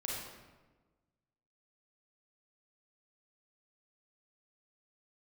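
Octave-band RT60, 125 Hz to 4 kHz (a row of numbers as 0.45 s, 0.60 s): 1.6 s, 1.5 s, 1.4 s, 1.2 s, 1.0 s, 0.80 s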